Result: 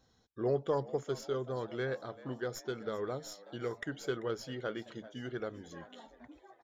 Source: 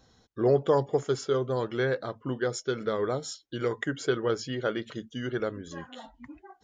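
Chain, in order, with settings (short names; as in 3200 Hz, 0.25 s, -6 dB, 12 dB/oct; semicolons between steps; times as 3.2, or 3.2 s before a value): tracing distortion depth 0.025 ms; frequency-shifting echo 0.389 s, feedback 58%, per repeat +88 Hz, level -19 dB; gain -8.5 dB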